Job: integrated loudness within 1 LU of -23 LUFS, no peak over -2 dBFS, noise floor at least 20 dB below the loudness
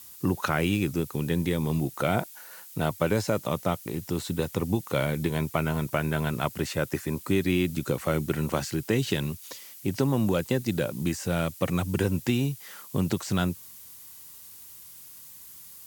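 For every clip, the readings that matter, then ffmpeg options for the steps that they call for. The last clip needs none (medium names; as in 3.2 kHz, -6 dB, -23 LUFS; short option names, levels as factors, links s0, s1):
noise floor -47 dBFS; noise floor target -48 dBFS; loudness -28.0 LUFS; peak level -10.5 dBFS; loudness target -23.0 LUFS
-> -af "afftdn=nr=6:nf=-47"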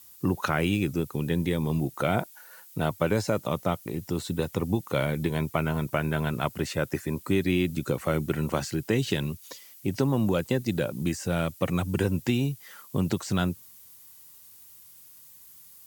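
noise floor -51 dBFS; loudness -28.0 LUFS; peak level -10.5 dBFS; loudness target -23.0 LUFS
-> -af "volume=1.78"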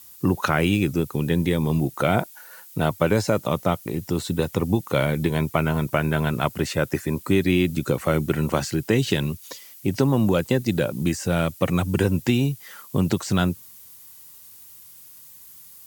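loudness -23.0 LUFS; peak level -5.5 dBFS; noise floor -46 dBFS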